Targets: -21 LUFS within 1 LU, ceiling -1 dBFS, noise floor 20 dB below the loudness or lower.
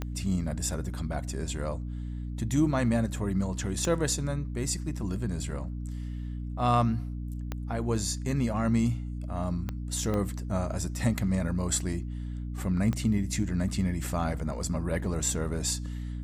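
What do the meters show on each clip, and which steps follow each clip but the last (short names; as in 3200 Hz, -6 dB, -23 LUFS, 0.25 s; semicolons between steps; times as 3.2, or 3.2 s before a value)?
clicks 6; hum 60 Hz; harmonics up to 300 Hz; hum level -32 dBFS; loudness -30.5 LUFS; peak -12.0 dBFS; loudness target -21.0 LUFS
-> de-click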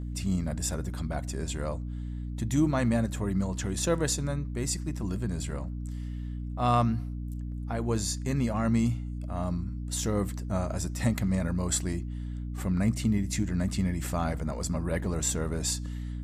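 clicks 0; hum 60 Hz; harmonics up to 300 Hz; hum level -32 dBFS
-> de-hum 60 Hz, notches 5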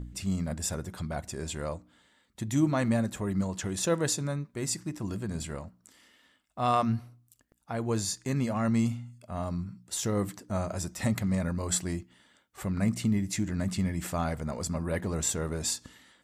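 hum none; loudness -31.0 LUFS; peak -13.5 dBFS; loudness target -21.0 LUFS
-> gain +10 dB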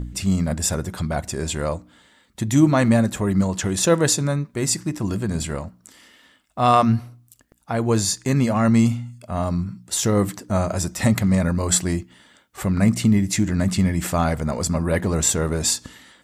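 loudness -21.0 LUFS; peak -3.5 dBFS; noise floor -58 dBFS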